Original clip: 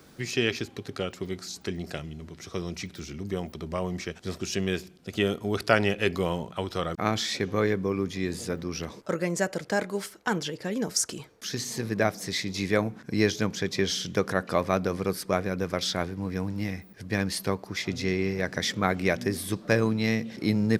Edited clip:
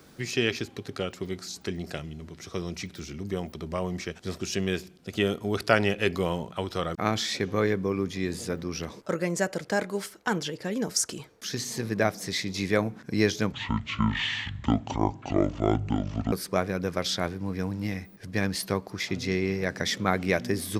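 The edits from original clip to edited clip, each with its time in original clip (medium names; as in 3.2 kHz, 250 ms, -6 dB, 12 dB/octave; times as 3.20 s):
13.52–15.09 s: speed 56%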